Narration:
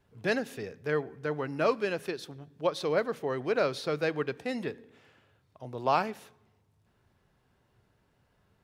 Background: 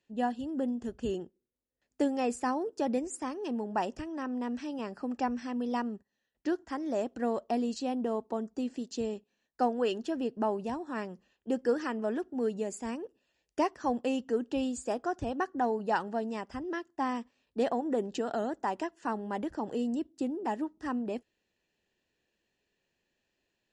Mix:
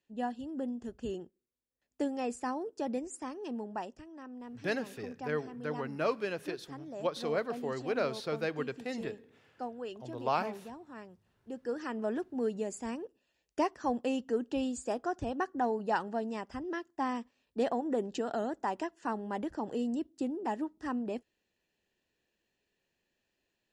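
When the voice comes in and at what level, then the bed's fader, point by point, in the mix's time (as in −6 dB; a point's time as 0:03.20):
4.40 s, −4.5 dB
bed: 0:03.64 −4.5 dB
0:03.98 −11.5 dB
0:11.52 −11.5 dB
0:12.00 −1.5 dB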